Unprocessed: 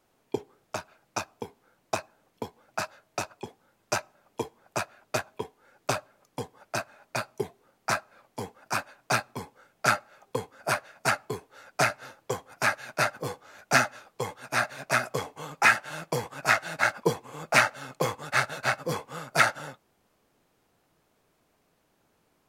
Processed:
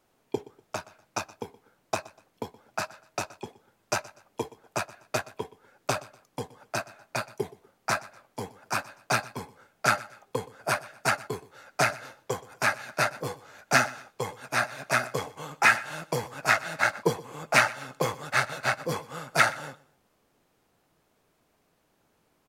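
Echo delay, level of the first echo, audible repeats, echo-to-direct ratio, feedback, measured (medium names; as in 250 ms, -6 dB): 122 ms, -20.0 dB, 2, -19.5 dB, 31%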